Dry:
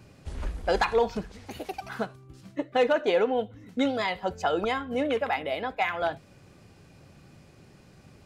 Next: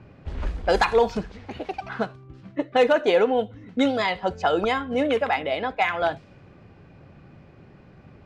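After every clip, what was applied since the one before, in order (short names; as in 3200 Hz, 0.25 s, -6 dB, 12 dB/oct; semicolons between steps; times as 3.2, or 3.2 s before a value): low-pass opened by the level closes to 2100 Hz, open at -20.5 dBFS; gain +4.5 dB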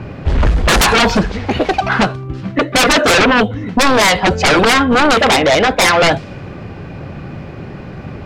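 sine folder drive 14 dB, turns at -9.5 dBFS; gain +2.5 dB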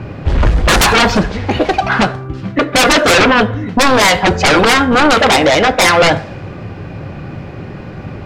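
reverb RT60 0.70 s, pre-delay 5 ms, DRR 11 dB; gain +1 dB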